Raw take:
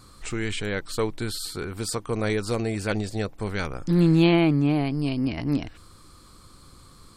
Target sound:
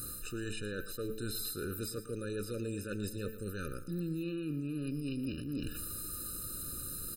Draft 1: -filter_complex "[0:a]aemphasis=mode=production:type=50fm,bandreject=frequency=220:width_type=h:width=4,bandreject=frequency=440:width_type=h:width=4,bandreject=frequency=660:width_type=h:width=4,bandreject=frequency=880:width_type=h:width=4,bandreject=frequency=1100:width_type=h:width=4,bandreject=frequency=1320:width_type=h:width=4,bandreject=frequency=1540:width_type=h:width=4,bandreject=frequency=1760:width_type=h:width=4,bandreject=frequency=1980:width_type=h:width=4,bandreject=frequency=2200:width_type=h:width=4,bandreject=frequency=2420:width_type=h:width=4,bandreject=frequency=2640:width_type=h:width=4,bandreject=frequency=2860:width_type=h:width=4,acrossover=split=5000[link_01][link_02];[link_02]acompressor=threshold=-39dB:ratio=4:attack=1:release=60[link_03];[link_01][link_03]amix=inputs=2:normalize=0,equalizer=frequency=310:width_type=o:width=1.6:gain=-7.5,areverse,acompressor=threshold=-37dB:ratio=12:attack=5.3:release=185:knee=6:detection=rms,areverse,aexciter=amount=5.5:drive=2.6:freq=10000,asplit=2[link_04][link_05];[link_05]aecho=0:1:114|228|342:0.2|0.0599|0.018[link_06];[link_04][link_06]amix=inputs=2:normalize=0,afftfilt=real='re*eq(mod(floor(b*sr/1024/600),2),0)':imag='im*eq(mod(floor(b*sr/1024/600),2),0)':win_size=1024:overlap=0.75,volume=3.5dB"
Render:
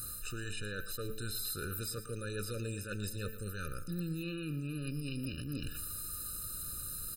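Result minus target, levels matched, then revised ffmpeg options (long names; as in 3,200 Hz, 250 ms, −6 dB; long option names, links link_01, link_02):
250 Hz band −3.0 dB
-filter_complex "[0:a]aemphasis=mode=production:type=50fm,bandreject=frequency=220:width_type=h:width=4,bandreject=frequency=440:width_type=h:width=4,bandreject=frequency=660:width_type=h:width=4,bandreject=frequency=880:width_type=h:width=4,bandreject=frequency=1100:width_type=h:width=4,bandreject=frequency=1320:width_type=h:width=4,bandreject=frequency=1540:width_type=h:width=4,bandreject=frequency=1760:width_type=h:width=4,bandreject=frequency=1980:width_type=h:width=4,bandreject=frequency=2200:width_type=h:width=4,bandreject=frequency=2420:width_type=h:width=4,bandreject=frequency=2640:width_type=h:width=4,bandreject=frequency=2860:width_type=h:width=4,acrossover=split=5000[link_01][link_02];[link_02]acompressor=threshold=-39dB:ratio=4:attack=1:release=60[link_03];[link_01][link_03]amix=inputs=2:normalize=0,equalizer=frequency=310:width_type=o:width=1.6:gain=2.5,areverse,acompressor=threshold=-37dB:ratio=12:attack=5.3:release=185:knee=6:detection=rms,areverse,aexciter=amount=5.5:drive=2.6:freq=10000,asplit=2[link_04][link_05];[link_05]aecho=0:1:114|228|342:0.2|0.0599|0.018[link_06];[link_04][link_06]amix=inputs=2:normalize=0,afftfilt=real='re*eq(mod(floor(b*sr/1024/600),2),0)':imag='im*eq(mod(floor(b*sr/1024/600),2),0)':win_size=1024:overlap=0.75,volume=3.5dB"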